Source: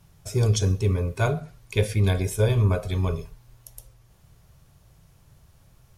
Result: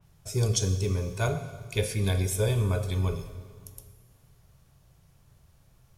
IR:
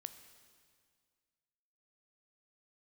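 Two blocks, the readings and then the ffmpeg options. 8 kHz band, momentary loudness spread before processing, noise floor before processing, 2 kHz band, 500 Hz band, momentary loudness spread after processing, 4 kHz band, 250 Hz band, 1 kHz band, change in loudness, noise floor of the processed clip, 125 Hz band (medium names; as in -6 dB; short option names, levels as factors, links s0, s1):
+2.0 dB, 8 LU, -57 dBFS, -3.5 dB, -4.0 dB, 18 LU, -0.5 dB, -4.0 dB, -4.5 dB, -4.0 dB, -61 dBFS, -4.5 dB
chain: -filter_complex "[1:a]atrim=start_sample=2205[s0];[0:a][s0]afir=irnorm=-1:irlink=0,adynamicequalizer=threshold=0.00251:dfrequency=3500:dqfactor=0.7:tfrequency=3500:tqfactor=0.7:attack=5:release=100:ratio=0.375:range=3.5:mode=boostabove:tftype=highshelf"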